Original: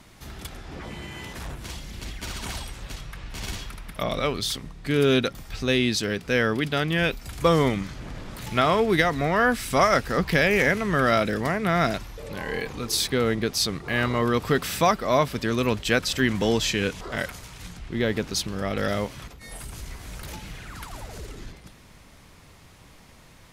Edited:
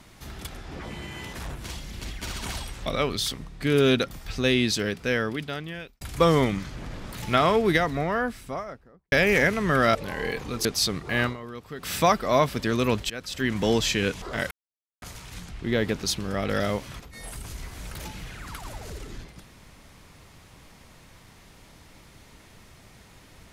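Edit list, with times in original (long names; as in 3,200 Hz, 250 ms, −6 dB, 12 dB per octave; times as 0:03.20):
0:02.86–0:04.10: remove
0:06.03–0:07.25: fade out
0:08.71–0:10.36: fade out and dull
0:11.19–0:12.24: remove
0:12.94–0:13.44: remove
0:14.02–0:14.71: duck −16 dB, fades 0.14 s
0:15.89–0:16.48: fade in, from −21 dB
0:17.30: splice in silence 0.51 s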